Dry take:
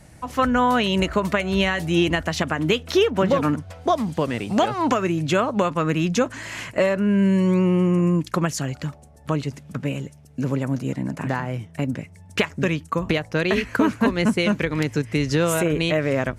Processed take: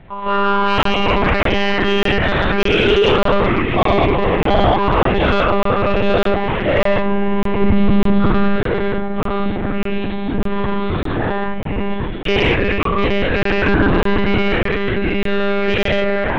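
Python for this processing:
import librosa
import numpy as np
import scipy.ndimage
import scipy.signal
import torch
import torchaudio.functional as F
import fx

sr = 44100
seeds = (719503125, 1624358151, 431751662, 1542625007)

p1 = fx.spec_dilate(x, sr, span_ms=240)
p2 = fx.echo_pitch(p1, sr, ms=171, semitones=-4, count=3, db_per_echo=-6.0)
p3 = fx.peak_eq(p2, sr, hz=98.0, db=11.5, octaves=2.3, at=(7.61, 8.56))
p4 = p3 + fx.echo_feedback(p3, sr, ms=412, feedback_pct=58, wet_db=-18.0, dry=0)
p5 = fx.lpc_monotone(p4, sr, seeds[0], pitch_hz=200.0, order=16)
p6 = 10.0 ** (-3.0 / 20.0) * np.tanh(p5 / 10.0 ** (-3.0 / 20.0))
y = fx.buffer_crackle(p6, sr, first_s=0.83, period_s=0.6, block=1024, kind='zero')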